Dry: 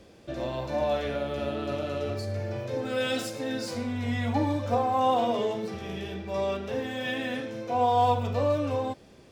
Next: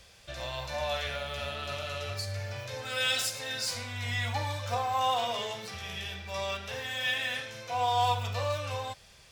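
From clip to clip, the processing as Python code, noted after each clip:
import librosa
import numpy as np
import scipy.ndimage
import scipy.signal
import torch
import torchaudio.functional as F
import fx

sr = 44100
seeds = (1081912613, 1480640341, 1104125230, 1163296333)

y = fx.tone_stack(x, sr, knobs='10-0-10')
y = y * 10.0 ** (8.0 / 20.0)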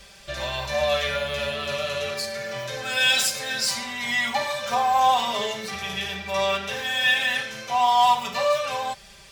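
y = x + 0.96 * np.pad(x, (int(5.1 * sr / 1000.0), 0))[:len(x)]
y = y * 10.0 ** (5.5 / 20.0)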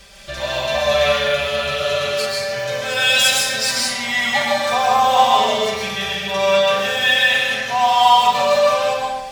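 y = fx.rev_freeverb(x, sr, rt60_s=0.97, hf_ratio=0.8, predelay_ms=90, drr_db=-2.5)
y = y * 10.0 ** (3.0 / 20.0)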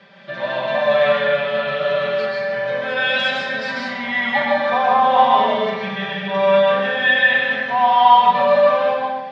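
y = fx.cabinet(x, sr, low_hz=140.0, low_slope=24, high_hz=3300.0, hz=(180.0, 270.0, 560.0, 930.0, 1700.0, 2700.0), db=(10, 8, 4, 5, 6, -5))
y = y * 10.0 ** (-2.5 / 20.0)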